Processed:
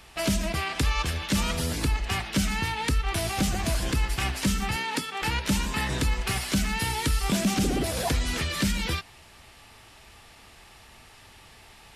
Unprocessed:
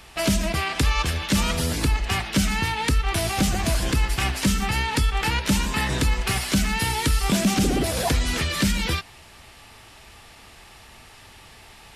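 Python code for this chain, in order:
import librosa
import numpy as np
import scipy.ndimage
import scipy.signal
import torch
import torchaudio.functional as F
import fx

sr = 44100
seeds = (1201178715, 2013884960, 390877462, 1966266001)

y = fx.highpass(x, sr, hz=180.0, slope=24, at=(4.76, 5.22))
y = F.gain(torch.from_numpy(y), -4.0).numpy()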